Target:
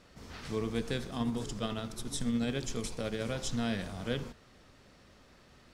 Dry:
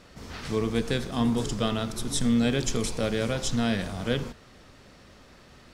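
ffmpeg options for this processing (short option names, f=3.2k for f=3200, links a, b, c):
-filter_complex "[0:a]asplit=3[a][b][c];[a]afade=t=out:st=1.17:d=0.02[d];[b]tremolo=f=14:d=0.36,afade=t=in:st=1.17:d=0.02,afade=t=out:st=3.24:d=0.02[e];[c]afade=t=in:st=3.24:d=0.02[f];[d][e][f]amix=inputs=3:normalize=0,volume=-7dB"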